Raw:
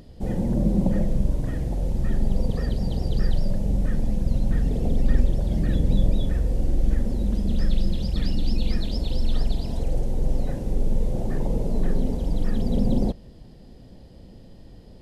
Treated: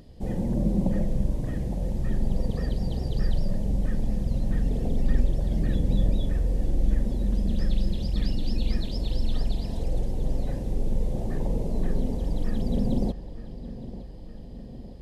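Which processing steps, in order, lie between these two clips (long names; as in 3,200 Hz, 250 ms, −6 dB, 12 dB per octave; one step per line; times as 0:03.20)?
notch filter 1,400 Hz, Q 10
on a send: feedback echo with a low-pass in the loop 911 ms, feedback 64%, low-pass 3,400 Hz, level −13.5 dB
on the sum: level −3 dB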